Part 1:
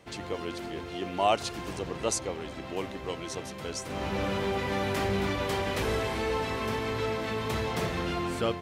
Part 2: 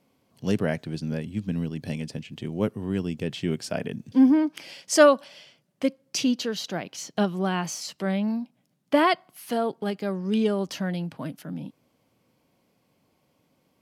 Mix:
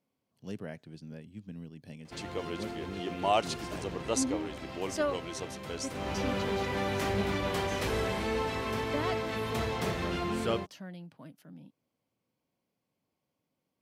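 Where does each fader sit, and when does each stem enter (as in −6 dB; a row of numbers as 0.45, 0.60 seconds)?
−2.0, −15.5 decibels; 2.05, 0.00 seconds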